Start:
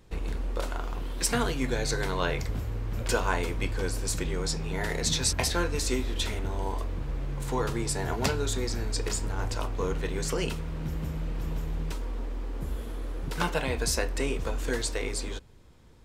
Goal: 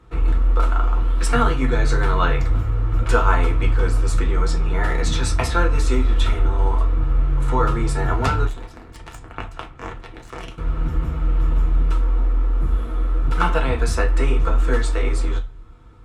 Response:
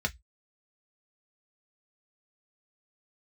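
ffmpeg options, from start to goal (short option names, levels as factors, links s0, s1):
-filter_complex "[0:a]equalizer=f=1300:w=7.9:g=13.5,asettb=1/sr,asplit=3[s0][s1][s2];[s0]atrim=end=8.454[s3];[s1]atrim=start=8.45:end=10.58,asetpts=PTS-STARTPTS,afade=t=in:d=0.004:c=qsin,afade=t=out:st=2.126:d=0.004:c=qsin,aeval=exprs='0.188*(cos(1*acos(clip(val(0)/0.188,-1,1)))-cos(1*PI/2))+0.0668*(cos(3*acos(clip(val(0)/0.188,-1,1)))-cos(3*PI/2))+0.0376*(cos(4*acos(clip(val(0)/0.188,-1,1)))-cos(4*PI/2))+0.0266*(cos(6*acos(clip(val(0)/0.188,-1,1)))-cos(6*PI/2))':c=same[s4];[s2]atrim=start=10.576[s5];[s3][s4]acrossfade=d=0.004:c1=hsin:c2=qsin[s6];[s6][s5]acrossfade=d=0.004:c1=qsin:c2=hsin[s7];[1:a]atrim=start_sample=2205,asetrate=22050,aresample=44100[s8];[s7][s8]afir=irnorm=-1:irlink=0,volume=0.501"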